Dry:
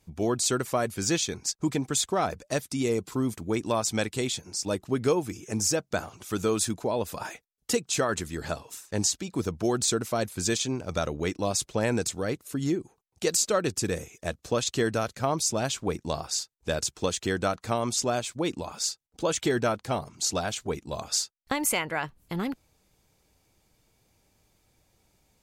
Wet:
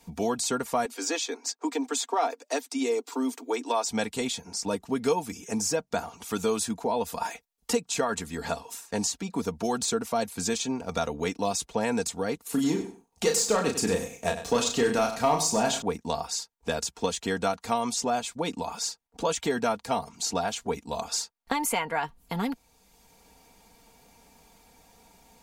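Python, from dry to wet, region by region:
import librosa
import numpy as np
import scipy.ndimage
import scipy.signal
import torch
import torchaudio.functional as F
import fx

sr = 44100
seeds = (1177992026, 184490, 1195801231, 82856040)

y = fx.chain(x, sr, fx.steep_highpass(hz=250.0, slope=96),
    fx.peak_eq(hz=11000.0, db=-11.0, octaves=0.33), at=(0.85, 3.89))
y = fx.chain(y, sr, fx.leveller(passes=1),
    fx.doubler(ms=33.0, db=-5),
    fx.echo_feedback(ms=95, feedback_pct=18, wet_db=-11.5), at=(12.42, 15.82))
y = fx.peak_eq(y, sr, hz=860.0, db=8.0, octaves=0.54)
y = y + 0.65 * np.pad(y, (int(4.3 * sr / 1000.0), 0))[:len(y)]
y = fx.band_squash(y, sr, depth_pct=40)
y = y * 10.0 ** (-3.5 / 20.0)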